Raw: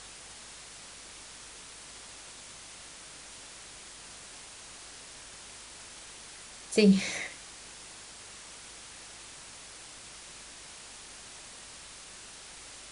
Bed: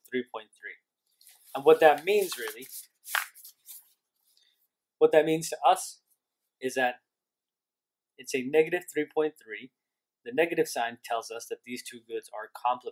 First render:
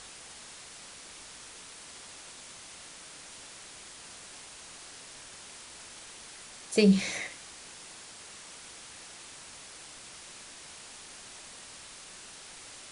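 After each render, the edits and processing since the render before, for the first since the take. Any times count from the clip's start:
hum removal 50 Hz, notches 3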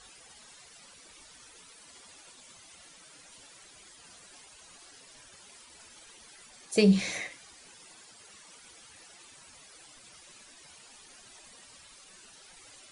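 broadband denoise 13 dB, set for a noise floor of −49 dBFS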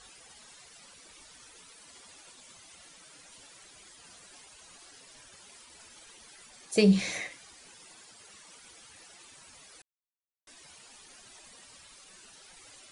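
0:09.82–0:10.47: silence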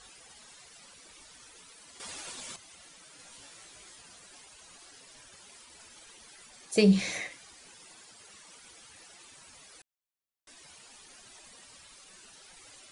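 0:02.00–0:02.56: clip gain +10.5 dB
0:03.17–0:04.02: double-tracking delay 18 ms −3 dB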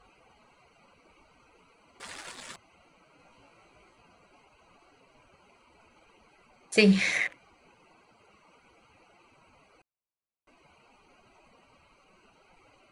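adaptive Wiener filter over 25 samples
parametric band 1,900 Hz +11.5 dB 1.6 octaves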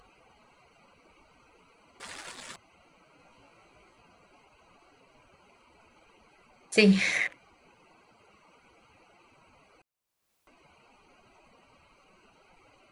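upward compression, threshold −58 dBFS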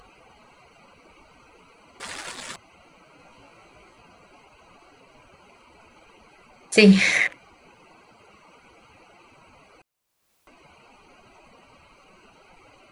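level +7.5 dB
brickwall limiter −2 dBFS, peak gain reduction 2 dB

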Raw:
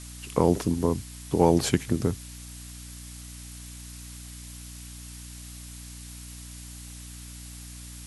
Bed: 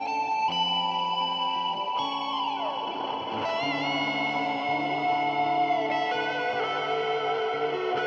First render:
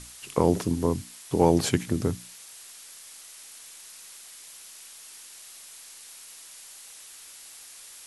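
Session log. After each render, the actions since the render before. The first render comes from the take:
mains-hum notches 60/120/180/240/300 Hz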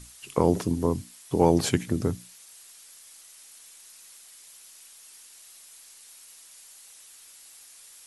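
broadband denoise 6 dB, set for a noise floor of −47 dBFS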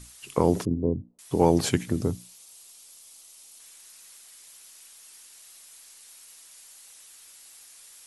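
0:00.65–0:01.19: inverse Chebyshev low-pass filter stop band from 3,200 Hz, stop band 80 dB
0:02.01–0:03.60: parametric band 1,700 Hz −8.5 dB 0.87 octaves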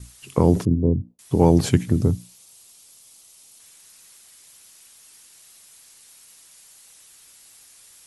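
noise gate with hold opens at −44 dBFS
parametric band 96 Hz +10.5 dB 2.9 octaves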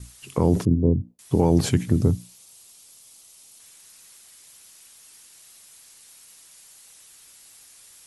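brickwall limiter −7 dBFS, peak gain reduction 5 dB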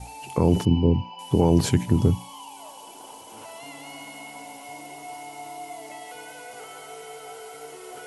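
mix in bed −13.5 dB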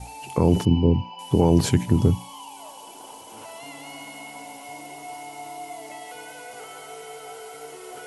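level +1 dB

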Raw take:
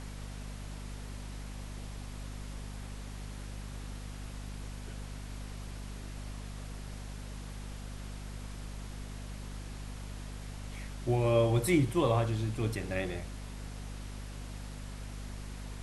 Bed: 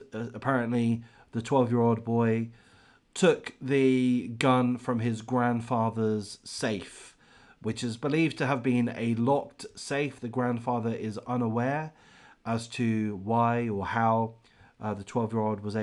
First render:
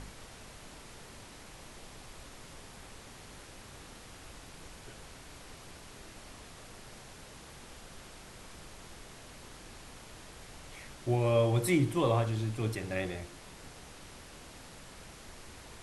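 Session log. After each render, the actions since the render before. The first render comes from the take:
hum removal 50 Hz, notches 7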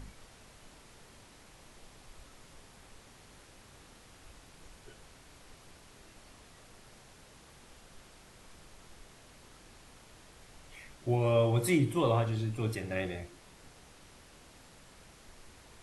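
noise reduction from a noise print 6 dB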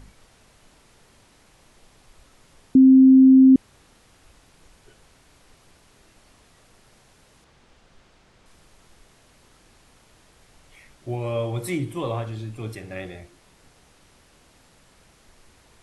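0:02.75–0:03.56: beep over 263 Hz −8 dBFS
0:07.44–0:08.46: high-frequency loss of the air 67 metres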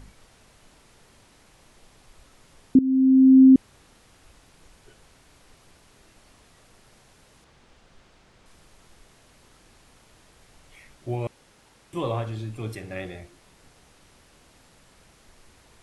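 0:02.79–0:03.42: fade in, from −16.5 dB
0:11.27–0:11.93: fill with room tone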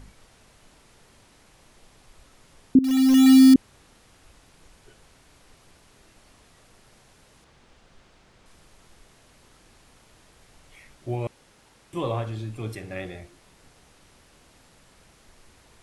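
0:02.84–0:03.55: one scale factor per block 3 bits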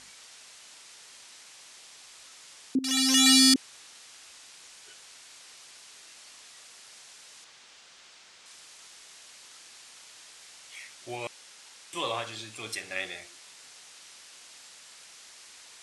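meter weighting curve ITU-R 468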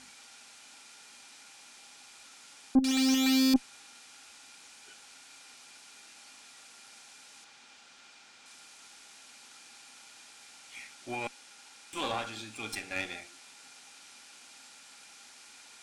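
tube saturation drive 26 dB, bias 0.65
hollow resonant body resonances 250/810/1,400/2,400 Hz, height 11 dB, ringing for 45 ms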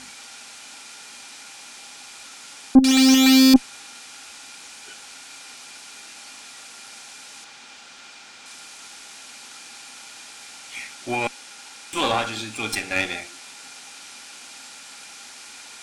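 level +11.5 dB

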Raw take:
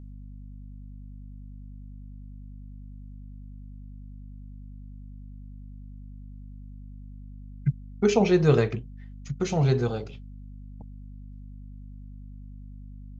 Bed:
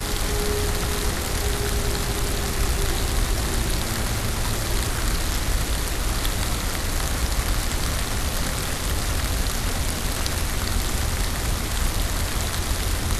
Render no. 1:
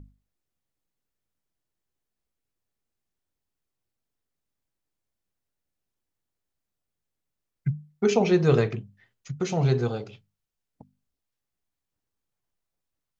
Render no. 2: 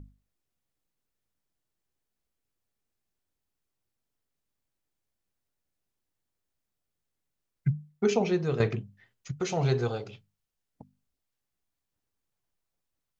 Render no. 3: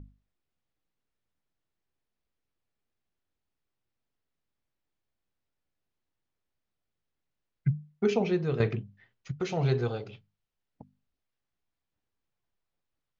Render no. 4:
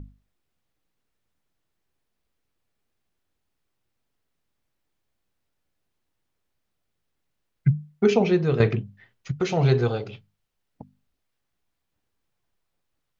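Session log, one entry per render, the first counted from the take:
mains-hum notches 50/100/150/200/250 Hz
0:07.75–0:08.60: fade out linear, to −12 dB; 0:09.31–0:10.06: parametric band 200 Hz −7 dB 1.4 octaves
low-pass filter 4,100 Hz 12 dB per octave; dynamic equaliser 900 Hz, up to −3 dB, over −43 dBFS, Q 0.83
level +7 dB

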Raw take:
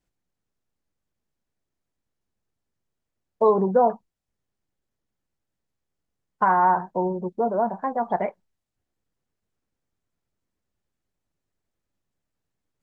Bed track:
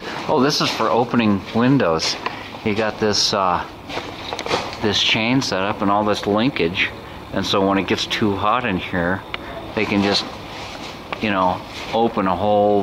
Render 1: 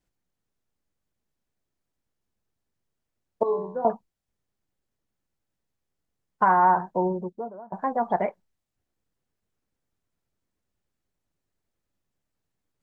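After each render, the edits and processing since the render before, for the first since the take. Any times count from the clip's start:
0:03.43–0:03.85: tuned comb filter 86 Hz, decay 0.67 s, mix 90%
0:07.14–0:07.72: fade out quadratic, to −23.5 dB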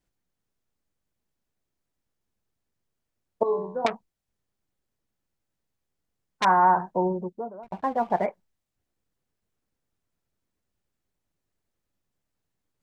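0:03.86–0:06.45: saturating transformer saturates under 3,100 Hz
0:07.63–0:08.26: slack as between gear wheels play −41.5 dBFS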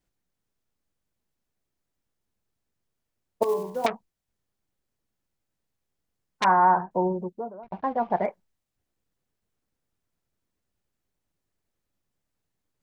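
0:03.42–0:03.88: one scale factor per block 5 bits
0:06.44–0:06.91: Butterworth low-pass 2,900 Hz 96 dB per octave
0:07.54–0:08.25: high-frequency loss of the air 180 metres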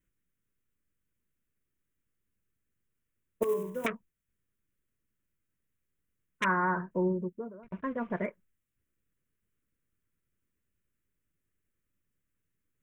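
phaser with its sweep stopped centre 1,900 Hz, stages 4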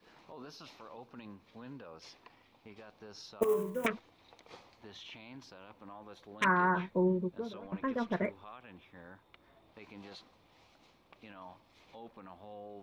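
mix in bed track −33 dB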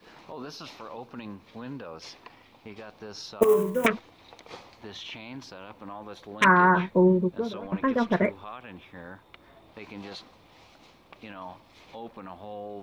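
level +9.5 dB

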